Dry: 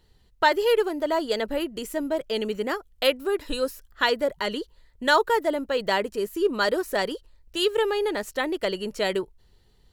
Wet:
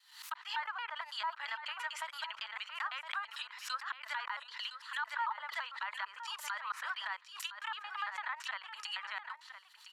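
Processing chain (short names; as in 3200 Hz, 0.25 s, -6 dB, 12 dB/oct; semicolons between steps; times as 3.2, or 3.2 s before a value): slices in reverse order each 0.112 s, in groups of 2; steep high-pass 980 Hz 48 dB/oct; in parallel at -2 dB: negative-ratio compressor -32 dBFS, ratio -0.5; on the sum: treble ducked by the level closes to 1300 Hz, closed at -25.5 dBFS; limiter -21.5 dBFS, peak gain reduction 8.5 dB; echo 1.012 s -11.5 dB; backwards sustainer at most 110 dB/s; gain -5.5 dB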